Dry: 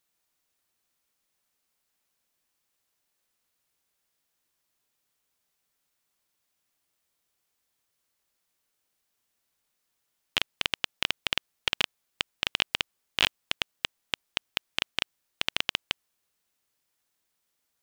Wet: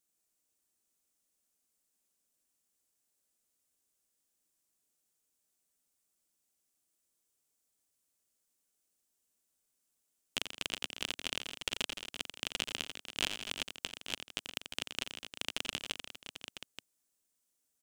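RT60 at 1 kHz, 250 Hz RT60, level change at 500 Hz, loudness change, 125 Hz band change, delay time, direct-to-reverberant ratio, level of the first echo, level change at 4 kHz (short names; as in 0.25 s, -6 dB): none, none, -5.0 dB, -8.0 dB, -6.5 dB, 88 ms, none, -9.0 dB, -8.0 dB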